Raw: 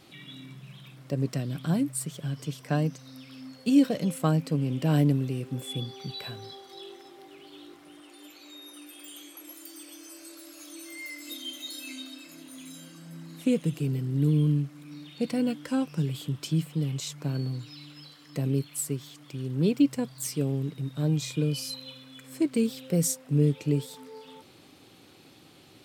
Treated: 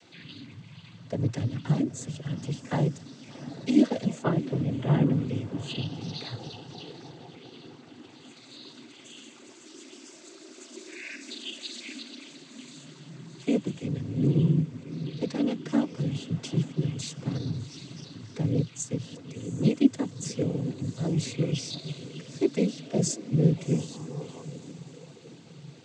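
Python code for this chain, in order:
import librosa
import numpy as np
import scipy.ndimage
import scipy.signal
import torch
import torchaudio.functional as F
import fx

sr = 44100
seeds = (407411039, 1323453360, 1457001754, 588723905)

y = fx.lowpass(x, sr, hz=3100.0, slope=24, at=(4.23, 5.12))
y = fx.echo_diffused(y, sr, ms=731, feedback_pct=43, wet_db=-14.0)
y = fx.noise_vocoder(y, sr, seeds[0], bands=16)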